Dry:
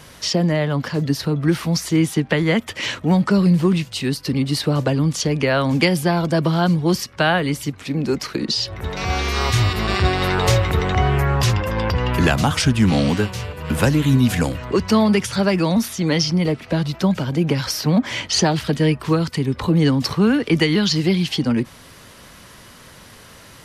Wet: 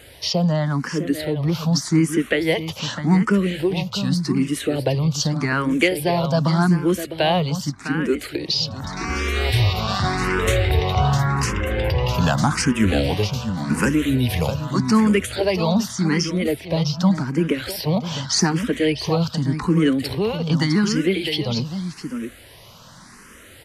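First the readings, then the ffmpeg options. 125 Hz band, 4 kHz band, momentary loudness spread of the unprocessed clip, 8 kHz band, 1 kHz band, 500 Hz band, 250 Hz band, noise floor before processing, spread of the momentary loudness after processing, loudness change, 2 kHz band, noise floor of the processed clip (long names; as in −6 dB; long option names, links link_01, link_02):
−2.0 dB, −1.5 dB, 6 LU, −1.0 dB, −1.5 dB, −1.0 dB, −1.5 dB, −44 dBFS, 6 LU, −1.5 dB, −1.5 dB, −45 dBFS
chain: -filter_complex "[0:a]aecho=1:1:655:0.355,asplit=2[link_01][link_02];[link_02]afreqshift=0.85[link_03];[link_01][link_03]amix=inputs=2:normalize=1,volume=1dB"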